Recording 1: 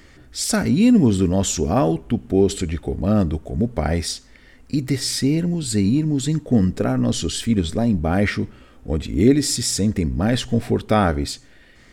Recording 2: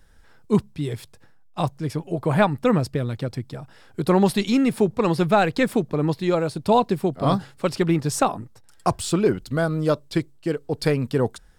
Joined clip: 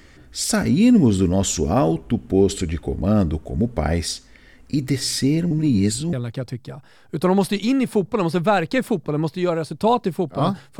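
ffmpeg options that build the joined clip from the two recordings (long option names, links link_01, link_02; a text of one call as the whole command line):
ffmpeg -i cue0.wav -i cue1.wav -filter_complex "[0:a]apad=whole_dur=10.79,atrim=end=10.79,asplit=2[link_01][link_02];[link_01]atrim=end=5.512[link_03];[link_02]atrim=start=5.508:end=6.132,asetpts=PTS-STARTPTS,areverse[link_04];[1:a]atrim=start=2.978:end=7.64[link_05];[link_03][link_04]acrossfade=duration=0.004:curve1=hsin:curve2=hsin[link_06];[link_06][link_05]acrossfade=duration=0.004:curve1=hsin:curve2=hsin" out.wav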